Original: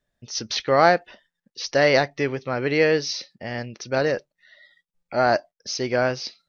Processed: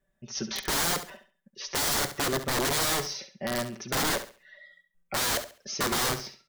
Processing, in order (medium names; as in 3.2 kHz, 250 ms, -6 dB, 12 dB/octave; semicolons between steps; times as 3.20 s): peaking EQ 4.5 kHz -11.5 dB 0.87 oct; comb 5.2 ms, depth 91%; in parallel at +0.5 dB: peak limiter -10.5 dBFS, peak gain reduction 8.5 dB; on the sum: integer overflow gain 14 dB; on a send: flutter echo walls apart 11.7 m, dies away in 0.36 s; on the sum: dynamic bell 2.6 kHz, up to -7 dB, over -38 dBFS, Q 2.9; trim -7.5 dB